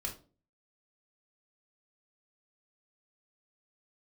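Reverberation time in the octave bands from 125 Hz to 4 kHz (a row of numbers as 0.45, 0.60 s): 0.55, 0.50, 0.45, 0.30, 0.25, 0.25 s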